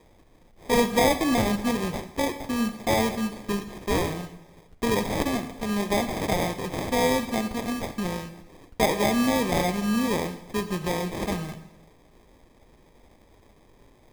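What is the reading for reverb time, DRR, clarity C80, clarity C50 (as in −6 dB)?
0.95 s, 10.5 dB, 13.5 dB, 11.5 dB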